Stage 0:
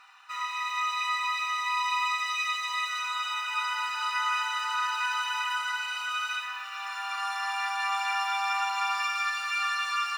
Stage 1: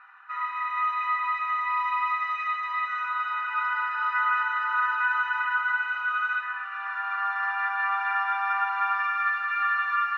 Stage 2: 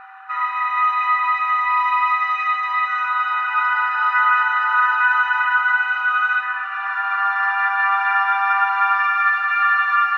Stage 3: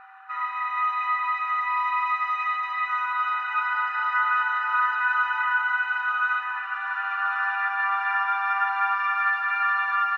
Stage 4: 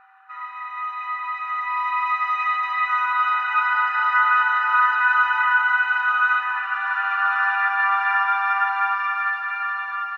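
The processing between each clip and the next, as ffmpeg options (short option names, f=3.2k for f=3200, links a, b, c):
-af "lowpass=f=1.6k:t=q:w=3.6,volume=-2.5dB"
-af "aeval=exprs='val(0)+0.00316*sin(2*PI*770*n/s)':c=same,volume=8.5dB"
-af "aecho=1:1:1168:0.376,volume=-7dB"
-af "dynaudnorm=f=440:g=9:m=13dB,volume=-5dB"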